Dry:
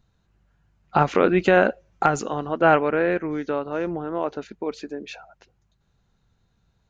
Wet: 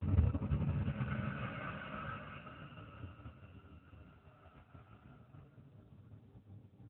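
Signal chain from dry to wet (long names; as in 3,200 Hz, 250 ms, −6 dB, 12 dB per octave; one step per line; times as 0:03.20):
samples in bit-reversed order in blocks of 128 samples
low-pass filter 1,100 Hz 12 dB per octave
parametric band 95 Hz +9 dB 1.8 octaves
hum removal 51.8 Hz, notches 28
extreme stretch with random phases 10×, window 0.25 s, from 0:04.96
transient designer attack +9 dB, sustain −9 dB
granular cloud 115 ms, grains 23 per second, spray 21 ms, pitch spread up and down by 0 semitones
flanger 0.3 Hz, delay 9.4 ms, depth 6.3 ms, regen −53%
on a send: repeating echo 892 ms, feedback 28%, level −19 dB
on the sum: level +15 dB
AMR narrowband 10.2 kbit/s 8,000 Hz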